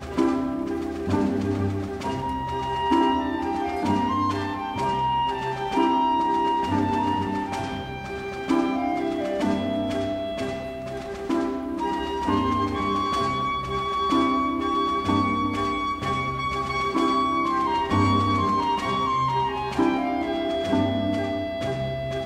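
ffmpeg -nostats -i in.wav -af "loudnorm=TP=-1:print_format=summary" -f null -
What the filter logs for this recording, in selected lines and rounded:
Input Integrated:    -24.8 LUFS
Input True Peak:      -8.9 dBTP
Input LRA:             3.4 LU
Input Threshold:     -34.8 LUFS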